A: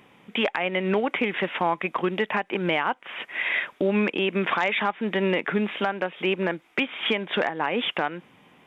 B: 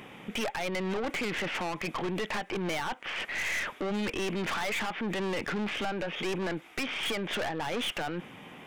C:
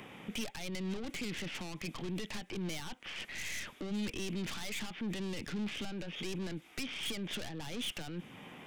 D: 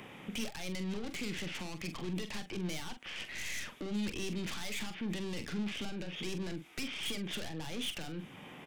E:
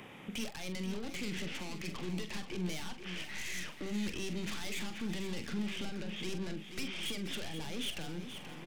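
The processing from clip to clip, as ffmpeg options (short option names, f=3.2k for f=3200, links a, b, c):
-af "aeval=exprs='(tanh(35.5*val(0)+0.4)-tanh(0.4))/35.5':c=same,alimiter=level_in=11.5dB:limit=-24dB:level=0:latency=1:release=15,volume=-11.5dB,bandreject=f=1k:w=19,volume=9dB"
-filter_complex "[0:a]acrossover=split=290|3000[a][b][c];[b]acompressor=threshold=-48dB:ratio=5[d];[a][d][c]amix=inputs=3:normalize=0,volume=-2dB"
-filter_complex "[0:a]asplit=2[a][b];[b]adelay=44,volume=-9dB[c];[a][c]amix=inputs=2:normalize=0"
-af "aecho=1:1:480|960|1440|1920|2400:0.316|0.158|0.0791|0.0395|0.0198,volume=-1dB"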